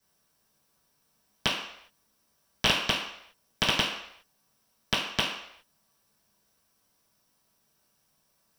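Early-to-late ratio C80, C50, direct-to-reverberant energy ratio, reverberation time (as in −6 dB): 7.0 dB, 5.0 dB, −10.5 dB, non-exponential decay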